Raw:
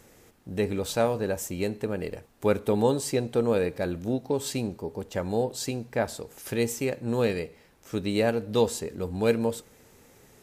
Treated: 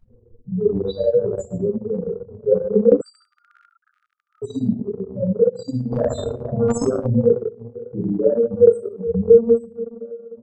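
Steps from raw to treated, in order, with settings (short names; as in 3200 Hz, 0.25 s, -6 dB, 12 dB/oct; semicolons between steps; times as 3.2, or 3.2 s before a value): diffused feedback echo 0.511 s, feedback 43%, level -15.5 dB; loudest bins only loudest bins 2; shoebox room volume 580 m³, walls furnished, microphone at 7.9 m; transient shaper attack +2 dB, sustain -10 dB; 3.01–4.42 brick-wall FIR high-pass 1200 Hz; 5.92–7.1 spectral compressor 2:1; gain +1 dB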